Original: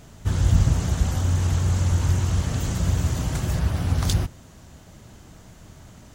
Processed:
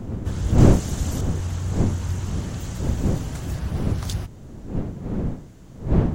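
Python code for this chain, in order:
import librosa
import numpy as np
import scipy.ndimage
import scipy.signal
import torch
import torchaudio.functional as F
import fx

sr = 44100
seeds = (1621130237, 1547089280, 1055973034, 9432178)

y = fx.dmg_wind(x, sr, seeds[0], corner_hz=190.0, level_db=-18.0)
y = fx.high_shelf(y, sr, hz=3600.0, db=9.0, at=(0.58, 1.21))
y = F.gain(torch.from_numpy(y), -5.5).numpy()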